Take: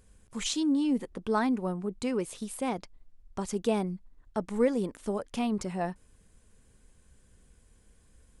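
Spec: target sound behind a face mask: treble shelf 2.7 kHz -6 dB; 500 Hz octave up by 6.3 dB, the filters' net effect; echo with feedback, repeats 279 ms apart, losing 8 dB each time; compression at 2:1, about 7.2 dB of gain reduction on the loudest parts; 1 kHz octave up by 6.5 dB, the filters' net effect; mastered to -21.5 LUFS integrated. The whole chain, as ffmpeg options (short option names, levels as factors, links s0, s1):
-af "equalizer=f=500:t=o:g=6,equalizer=f=1000:t=o:g=7,acompressor=threshold=0.0447:ratio=2,highshelf=f=2700:g=-6,aecho=1:1:279|558|837|1116|1395:0.398|0.159|0.0637|0.0255|0.0102,volume=2.99"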